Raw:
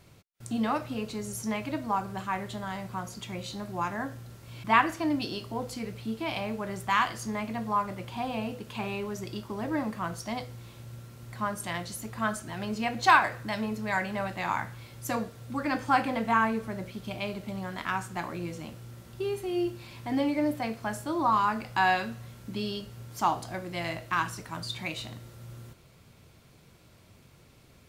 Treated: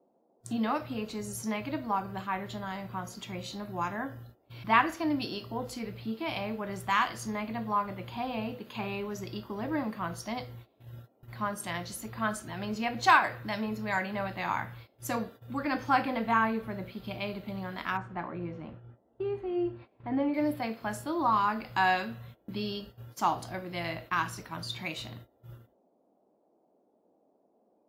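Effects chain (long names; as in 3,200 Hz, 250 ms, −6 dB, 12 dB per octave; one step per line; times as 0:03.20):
noise reduction from a noise print of the clip's start 15 dB
0:17.97–0:20.34: low-pass filter 1,700 Hz 12 dB per octave
noise gate −45 dBFS, range −24 dB
noise in a band 200–740 Hz −68 dBFS
level −1.5 dB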